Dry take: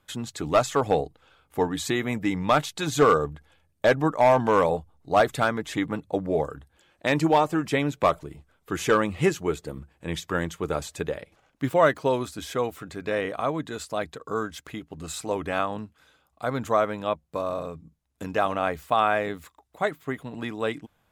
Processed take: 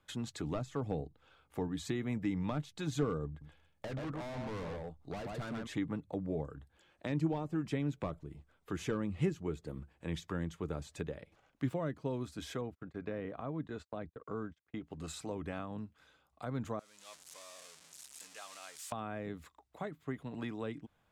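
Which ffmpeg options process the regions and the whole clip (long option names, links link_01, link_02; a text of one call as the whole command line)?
ffmpeg -i in.wav -filter_complex "[0:a]asettb=1/sr,asplit=3[link_01][link_02][link_03];[link_01]atrim=end=3.284[link_04];[link_02]atrim=start=3.28:end=5.67,asetpts=PTS-STARTPTS,afade=type=in:duration=0.004:curve=qsin,afade=type=out:start_time=2.386:duration=0.004:curve=qsin,aecho=1:1:128:0.422,atrim=end_sample=105399,volume=28dB,asoftclip=hard,volume=-28dB[link_05];[link_03]atrim=start=5.666[link_06];[link_04][link_05]acrossfade=duration=0.004:curve1=hsin:curve2=qsin[link_07];[link_07][link_06]acrossfade=duration=0.004:curve1=qsin:curve2=hsin,asettb=1/sr,asplit=3[link_08][link_09][link_10];[link_08]atrim=end=12.614[link_11];[link_09]atrim=start=12.61:end=14.84,asetpts=PTS-STARTPTS,afade=type=in:duration=0.004:curve=qsin,afade=type=out:start_time=2.226:duration=0.004:curve=qsin,lowpass=frequency=1700:poles=1,agate=range=-36dB:threshold=-44dB:ratio=16:release=100:detection=peak[link_12];[link_10]atrim=start=14.836[link_13];[link_11][link_12]acrossfade=duration=0.004:curve1=hsin:curve2=qsin[link_14];[link_14][link_13]acrossfade=duration=0.004:curve1=qsin:curve2=hsin,asettb=1/sr,asplit=3[link_15][link_16][link_17];[link_15]atrim=end=16.794[link_18];[link_16]atrim=start=16.79:end=18.92,asetpts=PTS-STARTPTS,afade=type=in:duration=0.004:curve=qsin,afade=type=out:start_time=2.126:duration=0.004:curve=qsin,aeval=exprs='val(0)+0.5*0.0531*sgn(val(0))':channel_layout=same,bandpass=frequency=8000:width_type=q:width=1.4[link_19];[link_17]atrim=start=18.916[link_20];[link_18][link_19]acrossfade=duration=0.004:curve1=hsin:curve2=qsin[link_21];[link_21][link_20]acrossfade=duration=0.004:curve1=qsin:curve2=hsin,highshelf=frequency=11000:gain=-12,acrossover=split=300[link_22][link_23];[link_23]acompressor=threshold=-38dB:ratio=4[link_24];[link_22][link_24]amix=inputs=2:normalize=0,volume=-5.5dB" out.wav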